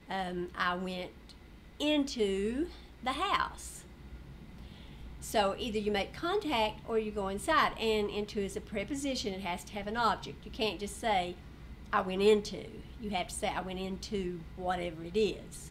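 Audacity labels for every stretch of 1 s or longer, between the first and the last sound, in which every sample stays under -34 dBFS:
3.690000	5.240000	silence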